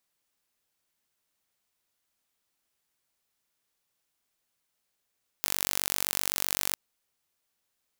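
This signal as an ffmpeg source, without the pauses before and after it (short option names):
-f lavfi -i "aevalsrc='0.891*eq(mod(n,923),0)':d=1.31:s=44100"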